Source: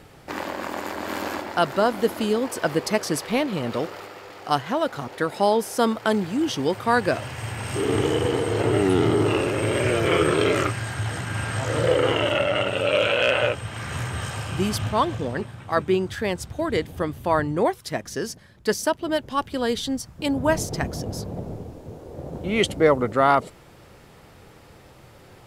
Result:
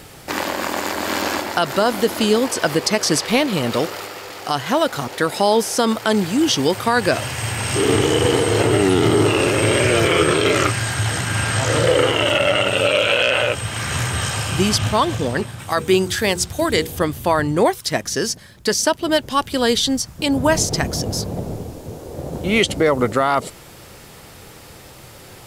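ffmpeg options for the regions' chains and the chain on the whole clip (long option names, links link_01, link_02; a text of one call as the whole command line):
ffmpeg -i in.wav -filter_complex "[0:a]asettb=1/sr,asplit=3[link_01][link_02][link_03];[link_01]atrim=end=15.594[link_04];[link_02]atrim=start=15.59:end=16.99,asetpts=PTS-STARTPTS,afade=type=in:duration=0.004:curve=qsin,afade=type=out:start_time=1.396:duration=0.004:curve=qsin,highshelf=frequency=6700:gain=10,bandreject=frequency=60:width_type=h:width=6,bandreject=frequency=120:width_type=h:width=6,bandreject=frequency=180:width_type=h:width=6,bandreject=frequency=240:width_type=h:width=6,bandreject=frequency=300:width_type=h:width=6,bandreject=frequency=360:width_type=h:width=6,bandreject=frequency=420:width_type=h:width=6,bandreject=frequency=480:width_type=h:width=6[link_05];[link_03]atrim=start=16.986[link_06];[link_04][link_05]acrossfade=duration=0.004:curve1=hsin:curve2=qsin[link_07];[link_07][link_06]acrossfade=duration=0.004:curve1=qsin:curve2=hsin,acrossover=split=7400[link_08][link_09];[link_09]acompressor=threshold=-49dB:ratio=4:attack=1:release=60[link_10];[link_08][link_10]amix=inputs=2:normalize=0,highshelf=frequency=3600:gain=11.5,alimiter=limit=-11.5dB:level=0:latency=1:release=83,volume=6dB" out.wav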